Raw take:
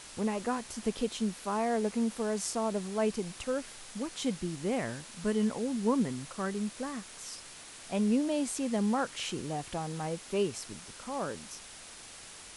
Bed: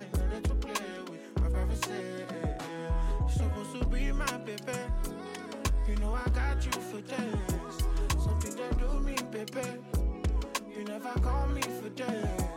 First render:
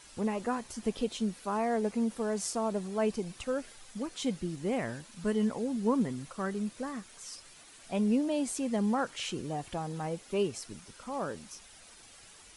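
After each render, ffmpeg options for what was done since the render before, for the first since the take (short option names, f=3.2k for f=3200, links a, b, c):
-af "afftdn=nr=9:nf=-49"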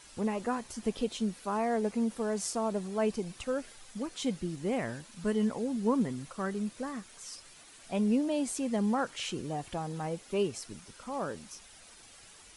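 -af anull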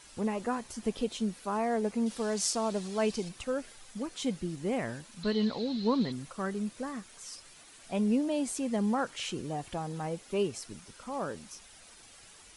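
-filter_complex "[0:a]asettb=1/sr,asplit=3[a][b][c];[a]atrim=end=2.064[d];[b]atrim=start=2.06:end=3.29,asetpts=PTS-STARTPTS,afade=t=in:d=0.004:c=qsin,afade=t=out:st=1.226:d=0.004:c=qsin,equalizer=f=4.5k:t=o:w=1.8:g=8.5[e];[c]atrim=start=3.286[f];[d][e]acrossfade=d=0.004:c1=hsin:c2=qsin[g];[g][f]acrossfade=d=0.004:c1=qsin:c2=hsin,asettb=1/sr,asplit=3[h][i][j];[h]atrim=end=5.234[k];[i]atrim=start=5.23:end=6.12,asetpts=PTS-STARTPTS,afade=t=in:d=0.004:c=qsin,afade=t=out:st=0.886:d=0.004:c=qsin,lowpass=f=4.1k:t=q:w=14[l];[j]atrim=start=6.116[m];[k][l]acrossfade=d=0.004:c1=hsin:c2=qsin[n];[n][m]acrossfade=d=0.004:c1=qsin:c2=hsin"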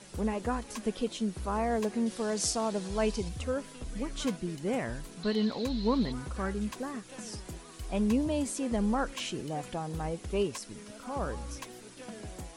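-filter_complex "[1:a]volume=-11dB[a];[0:a][a]amix=inputs=2:normalize=0"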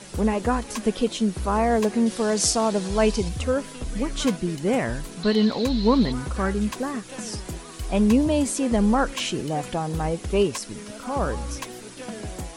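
-af "volume=9dB"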